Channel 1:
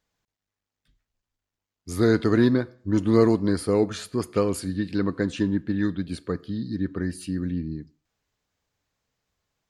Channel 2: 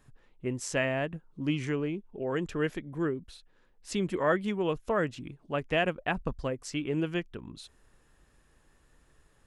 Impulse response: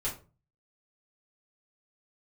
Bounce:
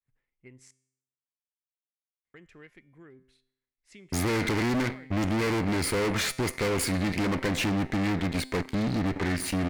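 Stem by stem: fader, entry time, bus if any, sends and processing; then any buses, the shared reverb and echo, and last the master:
0.0 dB, 2.25 s, no send, waveshaping leveller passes 5; compression, threshold -12 dBFS, peak gain reduction 4 dB
-9.0 dB, 0.00 s, muted 0.71–2.34 s, no send, expander -53 dBFS; compression, threshold -29 dBFS, peak gain reduction 8 dB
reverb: none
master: peaking EQ 2.1 kHz +14.5 dB 0.4 oct; feedback comb 130 Hz, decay 0.74 s, harmonics all, mix 50%; valve stage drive 24 dB, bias 0.7

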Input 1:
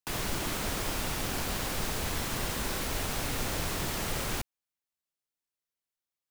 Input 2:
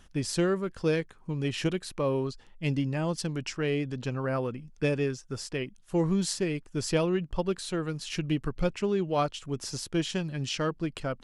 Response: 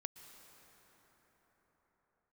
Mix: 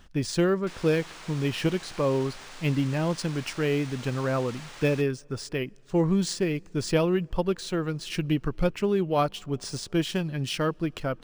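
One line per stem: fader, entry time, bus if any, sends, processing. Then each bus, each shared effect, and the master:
-8.0 dB, 0.60 s, no send, high-pass 810 Hz
+2.5 dB, 0.00 s, send -20 dB, none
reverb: on, pre-delay 108 ms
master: decimation joined by straight lines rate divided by 3×

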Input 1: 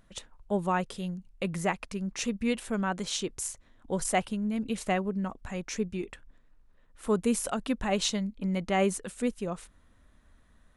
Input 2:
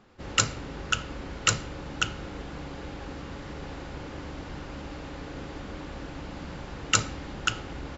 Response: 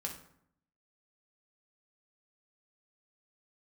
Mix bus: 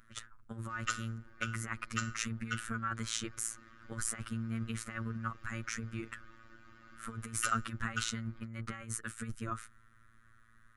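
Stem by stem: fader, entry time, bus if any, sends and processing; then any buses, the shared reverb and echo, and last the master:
-3.5 dB, 0.00 s, no send, octave divider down 1 oct, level -3 dB; graphic EQ 250/500/4000 Hz -3/-5/-4 dB; compressor with a negative ratio -32 dBFS, ratio -0.5
-13.5 dB, 0.50 s, send -7.5 dB, reverb removal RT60 1.4 s; comb 3.3 ms, depth 94%; auto duck -14 dB, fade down 1.20 s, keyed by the first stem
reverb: on, RT60 0.70 s, pre-delay 3 ms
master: FFT filter 280 Hz 0 dB, 880 Hz -9 dB, 1.3 kHz +14 dB, 2.7 kHz +1 dB; robot voice 113 Hz

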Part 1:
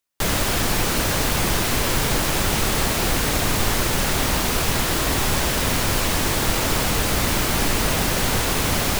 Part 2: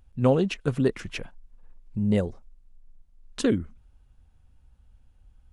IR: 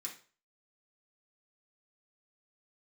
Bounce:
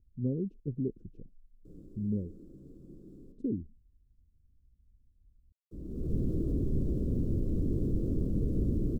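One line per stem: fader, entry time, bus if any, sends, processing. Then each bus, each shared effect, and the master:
-0.5 dB, 1.45 s, muted 3.32–5.71 s, send -16.5 dB, peak limiter -15.5 dBFS, peak gain reduction 8 dB; auto duck -23 dB, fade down 1.90 s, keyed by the second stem
-8.5 dB, 0.00 s, no send, none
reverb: on, RT60 0.40 s, pre-delay 3 ms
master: inverse Chebyshev low-pass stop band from 770 Hz, stop band 40 dB

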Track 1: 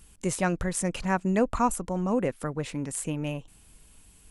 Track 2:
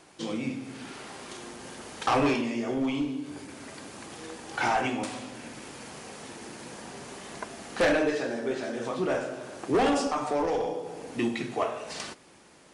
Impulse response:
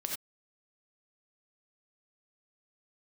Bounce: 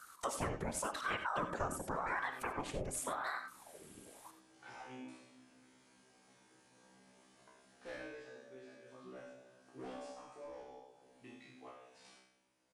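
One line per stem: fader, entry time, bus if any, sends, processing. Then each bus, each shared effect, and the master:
-3.5 dB, 0.00 s, send -4.5 dB, whisper effect; ring modulator with a swept carrier 810 Hz, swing 70%, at 0.89 Hz
-16.0 dB, 0.05 s, send -6 dB, feedback comb 64 Hz, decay 0.67 s, harmonics all, mix 100%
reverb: on, pre-delay 3 ms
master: compression 3:1, threshold -38 dBFS, peak gain reduction 13 dB

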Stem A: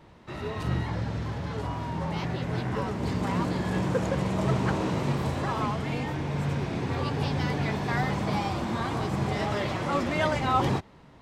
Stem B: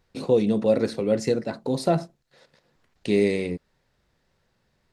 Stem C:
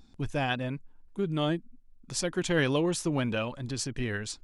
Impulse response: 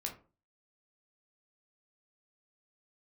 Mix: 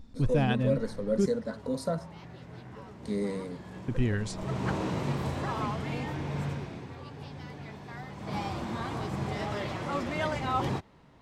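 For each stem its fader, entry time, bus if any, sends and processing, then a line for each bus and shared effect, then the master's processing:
4.18 s -16 dB -> 4.69 s -3.5 dB -> 6.42 s -3.5 dB -> 6.97 s -15 dB -> 8.15 s -15 dB -> 8.37 s -5 dB, 0.00 s, no send, none
-6.5 dB, 0.00 s, no send, gain riding 0.5 s; static phaser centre 530 Hz, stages 8
-4.0 dB, 0.00 s, muted 1.26–3.88 s, no send, bass shelf 400 Hz +12 dB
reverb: none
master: none

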